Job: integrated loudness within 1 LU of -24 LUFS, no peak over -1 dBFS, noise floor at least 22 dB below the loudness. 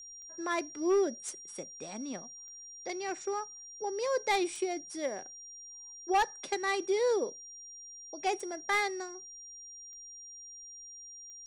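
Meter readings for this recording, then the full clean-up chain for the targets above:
clicks found 7; steady tone 5.7 kHz; tone level -46 dBFS; loudness -33.5 LUFS; peak level -21.0 dBFS; loudness target -24.0 LUFS
-> de-click; band-stop 5.7 kHz, Q 30; trim +9.5 dB

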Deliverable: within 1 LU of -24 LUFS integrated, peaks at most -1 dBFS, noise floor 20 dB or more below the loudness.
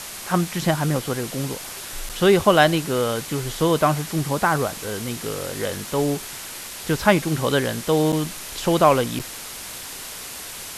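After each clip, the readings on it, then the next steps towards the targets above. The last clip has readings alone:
dropouts 3; longest dropout 7.4 ms; noise floor -35 dBFS; noise floor target -43 dBFS; loudness -22.5 LUFS; peak level -2.5 dBFS; loudness target -24.0 LUFS
-> interpolate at 2.09/8.12/9.19 s, 7.4 ms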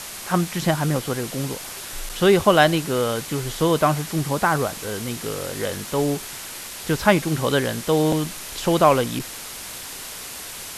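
dropouts 0; noise floor -35 dBFS; noise floor target -43 dBFS
-> noise reduction 8 dB, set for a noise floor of -35 dBFS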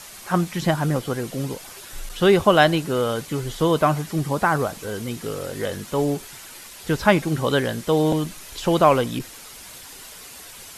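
noise floor -41 dBFS; noise floor target -42 dBFS
-> noise reduction 6 dB, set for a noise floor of -41 dBFS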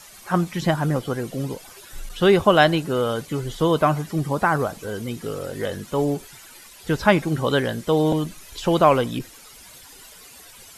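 noise floor -46 dBFS; loudness -22.0 LUFS; peak level -2.5 dBFS; loudness target -24.0 LUFS
-> trim -2 dB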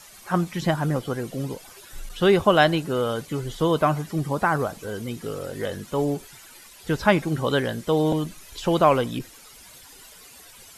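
loudness -24.0 LUFS; peak level -4.5 dBFS; noise floor -48 dBFS

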